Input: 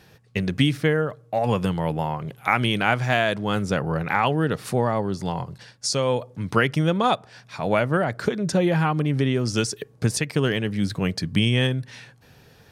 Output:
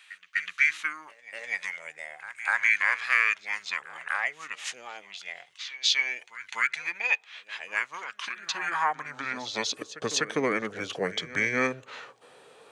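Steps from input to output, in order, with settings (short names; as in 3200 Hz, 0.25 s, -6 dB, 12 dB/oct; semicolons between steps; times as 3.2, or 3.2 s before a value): formant shift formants -6 st; high-pass sweep 2100 Hz -> 470 Hz, 8.2–9.96; pre-echo 0.249 s -16 dB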